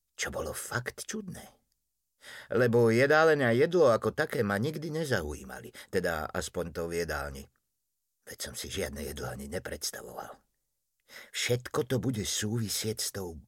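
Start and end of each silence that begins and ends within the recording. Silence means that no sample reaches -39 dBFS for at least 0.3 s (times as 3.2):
1.44–2.26
7.43–8.28
10.32–11.16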